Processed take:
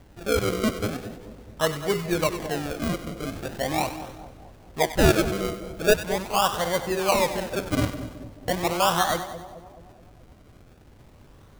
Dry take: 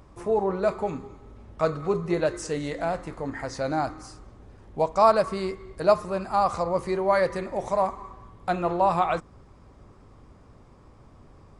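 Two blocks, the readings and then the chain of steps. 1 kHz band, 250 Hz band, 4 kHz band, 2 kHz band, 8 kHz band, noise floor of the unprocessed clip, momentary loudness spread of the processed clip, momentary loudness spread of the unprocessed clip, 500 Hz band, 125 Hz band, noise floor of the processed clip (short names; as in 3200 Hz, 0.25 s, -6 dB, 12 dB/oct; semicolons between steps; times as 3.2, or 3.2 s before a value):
-2.0 dB, +3.5 dB, +12.0 dB, +6.0 dB, +12.5 dB, -53 dBFS, 16 LU, 11 LU, -1.0 dB, +5.0 dB, -52 dBFS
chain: decimation with a swept rate 34×, swing 100% 0.41 Hz; split-band echo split 820 Hz, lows 0.214 s, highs 96 ms, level -11.5 dB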